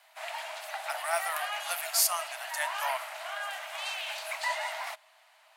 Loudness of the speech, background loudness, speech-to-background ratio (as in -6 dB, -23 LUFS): -31.5 LUFS, -35.5 LUFS, 4.0 dB